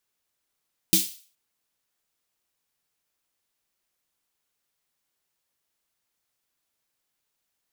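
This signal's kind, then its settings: snare drum length 0.42 s, tones 190 Hz, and 320 Hz, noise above 2.9 kHz, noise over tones 4.5 dB, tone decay 0.20 s, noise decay 0.42 s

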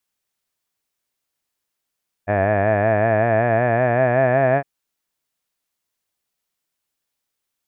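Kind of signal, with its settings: formant-synthesis vowel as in had, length 2.36 s, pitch 98.4 Hz, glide +5.5 st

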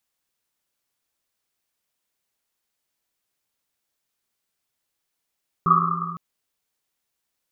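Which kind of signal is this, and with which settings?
Risset drum length 0.51 s, pitch 170 Hz, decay 2.69 s, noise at 1.2 kHz, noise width 180 Hz, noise 70%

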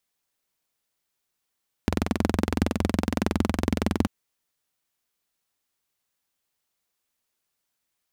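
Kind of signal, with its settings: single-cylinder engine model, steady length 2.19 s, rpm 2600, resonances 84/210 Hz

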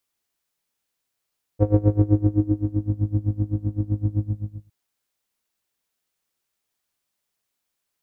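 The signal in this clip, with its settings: synth patch with tremolo G#2, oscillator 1 square, oscillator 2 saw, filter lowpass, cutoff 170 Hz, Q 3.5, filter envelope 1.5 oct, filter decay 1.36 s, filter sustain 35%, attack 36 ms, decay 0.95 s, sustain -7 dB, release 0.55 s, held 2.56 s, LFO 7.8 Hz, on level 22 dB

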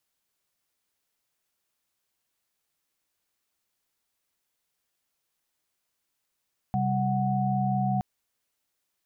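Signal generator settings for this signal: chord C3/G3/F#5 sine, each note -27.5 dBFS 1.27 s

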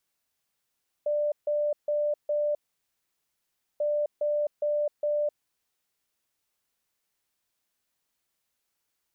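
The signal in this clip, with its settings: beep pattern sine 592 Hz, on 0.26 s, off 0.15 s, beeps 4, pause 1.25 s, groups 2, -23.5 dBFS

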